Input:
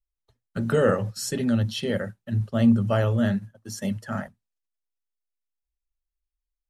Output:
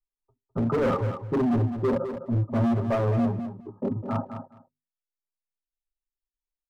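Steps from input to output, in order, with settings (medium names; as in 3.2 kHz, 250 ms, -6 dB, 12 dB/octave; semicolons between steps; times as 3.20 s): hum notches 50/100/150/200/250/300/350/400 Hz; reverb removal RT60 1.6 s; comb 7.5 ms, depth 72%; waveshaping leveller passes 2; in parallel at -2 dB: peak limiter -23 dBFS, peak gain reduction 14.5 dB; on the sum: rippled Chebyshev low-pass 1.3 kHz, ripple 9 dB; hard clipper -21 dBFS, distortion -9 dB; on a send: feedback delay 207 ms, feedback 16%, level -9 dB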